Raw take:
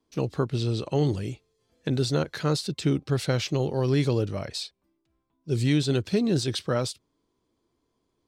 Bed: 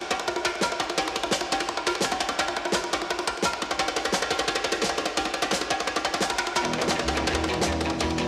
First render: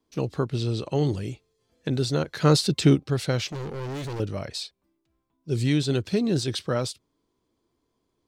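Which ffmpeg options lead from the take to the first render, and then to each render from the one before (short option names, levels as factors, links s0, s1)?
-filter_complex "[0:a]asplit=3[s0][s1][s2];[s0]afade=t=out:st=2.41:d=0.02[s3];[s1]acontrast=79,afade=t=in:st=2.41:d=0.02,afade=t=out:st=2.94:d=0.02[s4];[s2]afade=t=in:st=2.94:d=0.02[s5];[s3][s4][s5]amix=inputs=3:normalize=0,asettb=1/sr,asplit=3[s6][s7][s8];[s6]atrim=end=3.514[s9];[s7]atrim=start=3.51:end=4.2,asetpts=PTS-STARTPTS,afade=t=in:d=0.004:c=qsin,afade=t=out:st=0.686:d=0.004:c=qsin,asoftclip=type=hard:threshold=0.0282[s10];[s8]atrim=start=4.196[s11];[s9][s10]acrossfade=d=0.004:c1=hsin:c2=qsin[s12];[s12][s11]acrossfade=d=0.004:c1=qsin:c2=hsin"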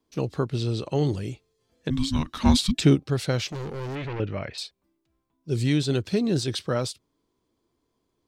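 -filter_complex "[0:a]asettb=1/sr,asplit=3[s0][s1][s2];[s0]atrim=end=1.904[s3];[s1]atrim=start=1.9:end=2.8,asetpts=PTS-STARTPTS,afade=t=in:d=0.004:c=qsin,afade=t=out:st=0.896:d=0.004:c=qsin,afreqshift=-390[s4];[s2]atrim=start=2.796[s5];[s3][s4]acrossfade=d=0.004:c1=hsin:c2=qsin[s6];[s6][s5]acrossfade=d=0.004:c1=qsin:c2=hsin,asettb=1/sr,asplit=3[s7][s8][s9];[s7]atrim=end=3.954[s10];[s8]atrim=start=3.95:end=4.58,asetpts=PTS-STARTPTS,afade=t=in:d=0.004:c=qsin,afade=t=out:st=0.626:d=0.004:c=qsin,lowpass=f=2400:t=q:w=2[s11];[s9]atrim=start=4.576[s12];[s10][s11]acrossfade=d=0.004:c1=hsin:c2=qsin[s13];[s13][s12]acrossfade=d=0.004:c1=qsin:c2=hsin"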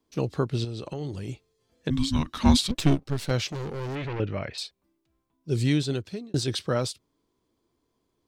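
-filter_complex "[0:a]asettb=1/sr,asplit=3[s0][s1][s2];[s0]atrim=end=0.644[s3];[s1]atrim=start=0.64:end=1.29,asetpts=PTS-STARTPTS,afade=t=in:d=0.004:c=qsin,afade=t=out:st=0.646:d=0.004:c=qsin,acompressor=threshold=0.0316:ratio=6:attack=3.2:release=140:knee=1:detection=peak[s4];[s2]atrim=start=1.286[s5];[s3][s4]acrossfade=d=0.004:c1=hsin:c2=qsin[s6];[s6][s5]acrossfade=d=0.004:c1=qsin:c2=hsin,asettb=1/sr,asplit=3[s7][s8][s9];[s7]atrim=end=2.684[s10];[s8]atrim=start=2.68:end=3.31,asetpts=PTS-STARTPTS,afade=t=in:d=0.004:c=qsin,afade=t=out:st=0.626:d=0.004:c=qsin,aeval=exprs='if(lt(val(0),0),0.251*val(0),val(0))':c=same[s11];[s9]atrim=start=3.306[s12];[s10][s11]acrossfade=d=0.004:c1=hsin:c2=qsin[s13];[s13][s12]acrossfade=d=0.004:c1=qsin:c2=hsin,asplit=2[s14][s15];[s14]atrim=end=6.34,asetpts=PTS-STARTPTS,afade=t=out:st=5.69:d=0.65[s16];[s15]atrim=start=6.34,asetpts=PTS-STARTPTS,afade=t=in:d=0.004:c=hsin[s17];[s16][s17]concat=n=2:v=0:a=1"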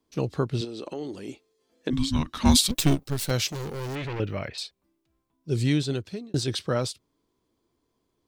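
-filter_complex "[0:a]asettb=1/sr,asplit=3[s0][s1][s2];[s0]atrim=end=0.614[s3];[s1]atrim=start=0.61:end=1.93,asetpts=PTS-STARTPTS,afade=t=in:d=0.004:c=qsin,afade=t=out:st=1.316:d=0.004:c=qsin,lowshelf=f=180:t=q:w=1.5:g=-13[s4];[s2]atrim=start=1.926[s5];[s3][s4]acrossfade=d=0.004:c1=hsin:c2=qsin[s6];[s6][s5]acrossfade=d=0.004:c1=qsin:c2=hsin,asettb=1/sr,asplit=3[s7][s8][s9];[s7]atrim=end=2.454[s10];[s8]atrim=start=2.45:end=4.48,asetpts=PTS-STARTPTS,afade=t=in:d=0.004:c=qsin,afade=t=out:st=2.026:d=0.004:c=qsin,aemphasis=mode=production:type=50fm[s11];[s9]atrim=start=4.476[s12];[s10][s11]acrossfade=d=0.004:c1=hsin:c2=qsin[s13];[s13][s12]acrossfade=d=0.004:c1=qsin:c2=hsin"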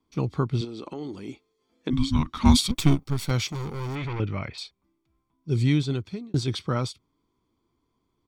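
-af "lowpass=f=3700:p=1,aecho=1:1:0.9:0.48"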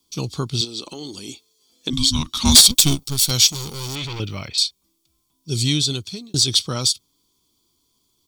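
-af "aexciter=amount=11.9:drive=2.9:freq=3000,asoftclip=type=tanh:threshold=0.75"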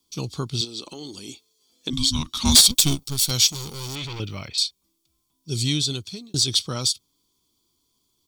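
-af "volume=0.668"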